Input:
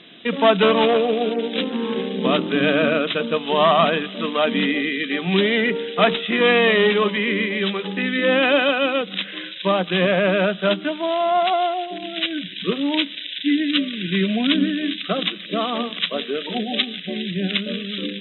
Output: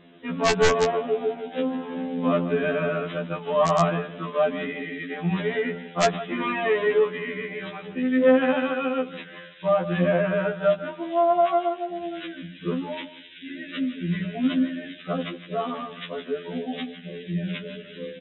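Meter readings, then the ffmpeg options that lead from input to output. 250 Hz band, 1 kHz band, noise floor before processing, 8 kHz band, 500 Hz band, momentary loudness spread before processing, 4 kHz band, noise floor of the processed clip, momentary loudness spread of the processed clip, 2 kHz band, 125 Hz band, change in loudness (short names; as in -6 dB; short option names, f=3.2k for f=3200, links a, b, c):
-5.0 dB, -4.5 dB, -35 dBFS, n/a, -3.5 dB, 9 LU, -14.5 dB, -45 dBFS, 14 LU, -8.5 dB, -1.5 dB, -5.0 dB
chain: -af "lowpass=1.6k,equalizer=f=240:w=0.5:g=-2,bandreject=f=60:t=h:w=6,bandreject=f=120:t=h:w=6,bandreject=f=180:t=h:w=6,aecho=1:1:157|314:0.2|0.0319,aresample=16000,aeval=exprs='(mod(2.51*val(0)+1,2)-1)/2.51':c=same,aresample=44100,lowshelf=f=320:g=6.5,afftfilt=real='re*2*eq(mod(b,4),0)':imag='im*2*eq(mod(b,4),0)':win_size=2048:overlap=0.75,volume=-2dB"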